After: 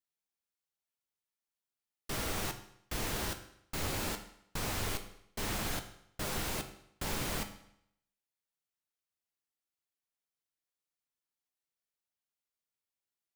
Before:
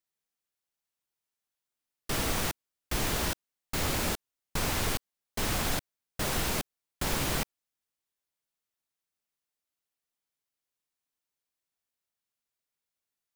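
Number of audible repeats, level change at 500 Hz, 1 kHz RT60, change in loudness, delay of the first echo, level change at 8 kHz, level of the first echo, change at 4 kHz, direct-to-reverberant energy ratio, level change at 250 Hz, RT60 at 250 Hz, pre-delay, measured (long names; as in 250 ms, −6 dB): no echo audible, −5.5 dB, 0.75 s, −6.0 dB, no echo audible, −6.0 dB, no echo audible, −6.0 dB, 6.5 dB, −5.5 dB, 0.70 s, 10 ms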